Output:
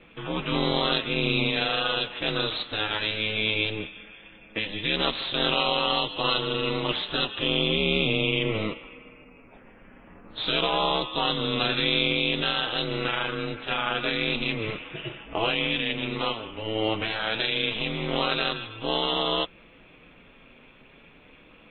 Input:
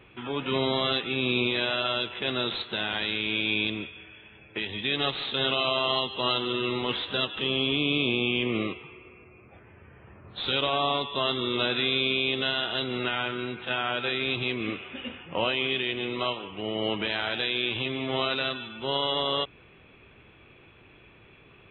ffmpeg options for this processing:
-af "aeval=exprs='val(0)*sin(2*PI*110*n/s)':c=same,flanger=delay=6:depth=1.6:regen=-48:speed=0.46:shape=sinusoidal,volume=8.5dB"

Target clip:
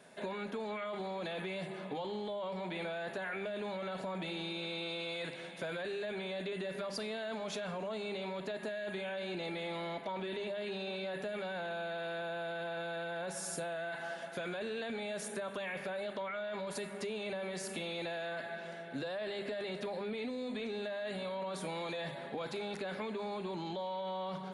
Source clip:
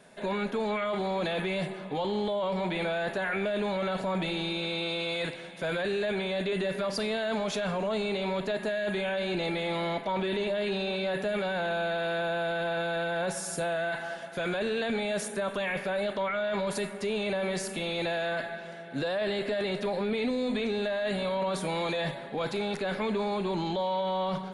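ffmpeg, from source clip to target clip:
-af "highpass=f=100:p=1,bandreject=f=50:t=h:w=6,bandreject=f=100:t=h:w=6,bandreject=f=150:t=h:w=6,bandreject=f=200:t=h:w=6,acompressor=threshold=-34dB:ratio=6,volume=-2.5dB"

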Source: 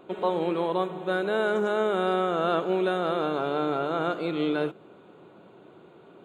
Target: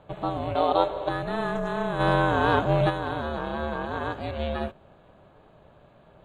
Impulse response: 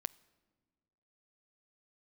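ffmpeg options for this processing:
-filter_complex "[0:a]asplit=3[a][b][c];[a]afade=t=out:st=1.99:d=0.02[d];[b]acontrast=69,afade=t=in:st=1.99:d=0.02,afade=t=out:st=2.89:d=0.02[e];[c]afade=t=in:st=2.89:d=0.02[f];[d][e][f]amix=inputs=3:normalize=0,aeval=exprs='val(0)*sin(2*PI*230*n/s)':c=same,asettb=1/sr,asplit=3[g][h][i];[g]atrim=end=0.554[j];[h]atrim=start=0.55:end=1.09,asetpts=PTS-STARTPTS,afade=t=in:d=0.004:c=qsin,afade=t=out:st=0.536:d=0.004:c=qsin,equalizer=f=125:t=o:w=1:g=-11,equalizer=f=500:t=o:w=1:g=11,equalizer=f=1k:t=o:w=1:g=6,equalizer=f=4k:t=o:w=1:g=11[k];[i]atrim=start=1.086[l];[j][k]acrossfade=d=0.004:c1=hsin:c2=qsin[m];[m][l]acrossfade=d=0.004:c1=qsin:c2=hsin"

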